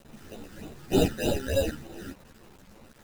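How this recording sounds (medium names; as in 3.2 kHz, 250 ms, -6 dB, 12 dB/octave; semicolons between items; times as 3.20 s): aliases and images of a low sample rate 1.1 kHz, jitter 0%; phasing stages 12, 3.3 Hz, lowest notch 700–2000 Hz; a quantiser's noise floor 8-bit, dither none; a shimmering, thickened sound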